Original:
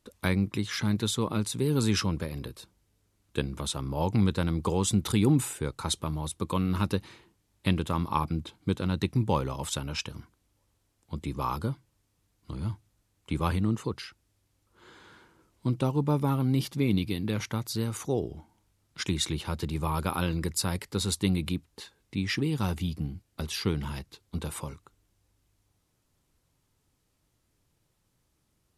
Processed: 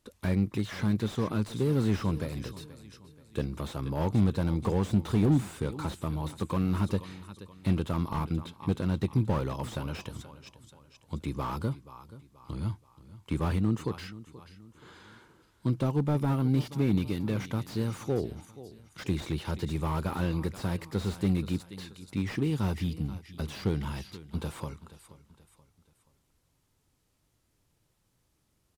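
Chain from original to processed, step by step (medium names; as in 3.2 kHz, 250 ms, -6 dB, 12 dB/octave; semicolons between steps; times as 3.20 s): on a send: feedback delay 479 ms, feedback 42%, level -18 dB; on the sum: slew-rate limiter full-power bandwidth 28 Hz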